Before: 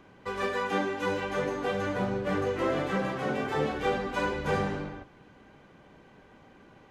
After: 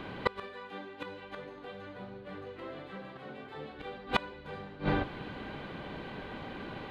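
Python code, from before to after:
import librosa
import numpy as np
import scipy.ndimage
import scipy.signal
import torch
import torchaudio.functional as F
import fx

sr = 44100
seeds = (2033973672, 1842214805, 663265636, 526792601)

y = fx.high_shelf_res(x, sr, hz=4900.0, db=-6.5, q=3.0)
y = fx.gate_flip(y, sr, shuts_db=-24.0, range_db=-28)
y = F.gain(torch.from_numpy(y), 12.5).numpy()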